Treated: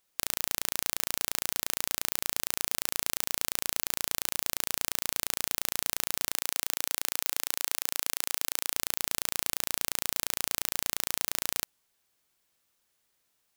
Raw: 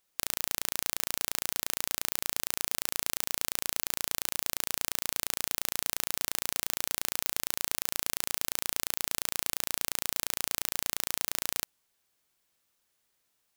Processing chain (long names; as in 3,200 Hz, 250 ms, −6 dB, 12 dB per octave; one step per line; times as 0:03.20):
0:06.34–0:08.75: low-shelf EQ 270 Hz −11.5 dB
level +1 dB